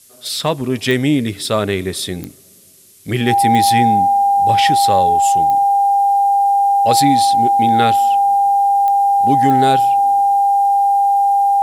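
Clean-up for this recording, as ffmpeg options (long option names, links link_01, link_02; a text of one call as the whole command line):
ffmpeg -i in.wav -af "adeclick=threshold=4,bandreject=frequency=800:width=30,agate=range=-21dB:threshold=-23dB" out.wav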